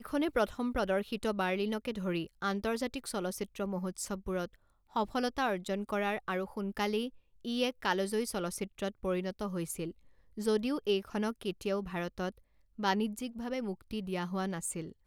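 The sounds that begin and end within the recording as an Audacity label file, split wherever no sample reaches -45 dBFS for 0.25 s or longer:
4.960000	7.090000	sound
7.450000	9.910000	sound
10.370000	12.310000	sound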